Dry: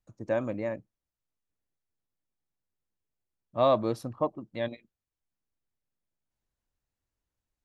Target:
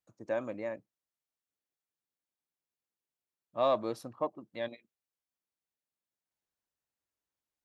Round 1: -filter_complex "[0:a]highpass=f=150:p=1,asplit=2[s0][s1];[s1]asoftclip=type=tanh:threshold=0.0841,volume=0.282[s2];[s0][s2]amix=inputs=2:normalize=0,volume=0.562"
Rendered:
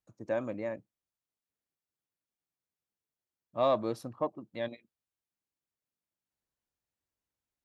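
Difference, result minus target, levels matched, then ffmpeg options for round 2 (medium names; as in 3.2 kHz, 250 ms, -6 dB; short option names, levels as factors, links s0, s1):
125 Hz band +4.5 dB
-filter_complex "[0:a]highpass=f=350:p=1,asplit=2[s0][s1];[s1]asoftclip=type=tanh:threshold=0.0841,volume=0.282[s2];[s0][s2]amix=inputs=2:normalize=0,volume=0.562"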